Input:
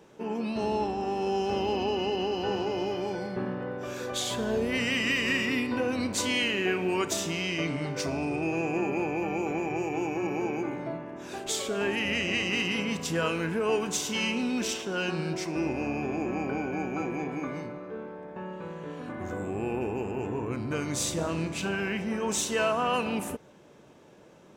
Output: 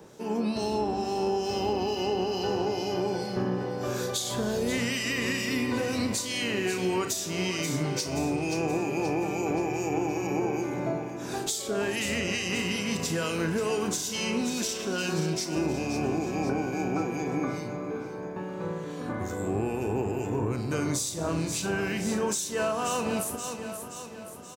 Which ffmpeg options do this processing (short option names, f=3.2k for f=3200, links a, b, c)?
-filter_complex "[0:a]acrossover=split=2400[a][b];[a]aeval=exprs='val(0)*(1-0.5/2+0.5/2*cos(2*PI*2.3*n/s))':c=same[c];[b]aeval=exprs='val(0)*(1-0.5/2-0.5/2*cos(2*PI*2.3*n/s))':c=same[d];[c][d]amix=inputs=2:normalize=0,acrossover=split=390[e][f];[f]aexciter=amount=3.7:drive=5.8:freq=3.9k[g];[e][g]amix=inputs=2:normalize=0,equalizer=f=110:t=o:w=0.61:g=4,asplit=2[h][i];[i]adelay=38,volume=-12dB[j];[h][j]amix=inputs=2:normalize=0,aecho=1:1:526|1052|1578|2104|2630:0.224|0.112|0.056|0.028|0.014,acompressor=threshold=-29dB:ratio=6,highshelf=f=3.6k:g=-7.5,volume=5.5dB"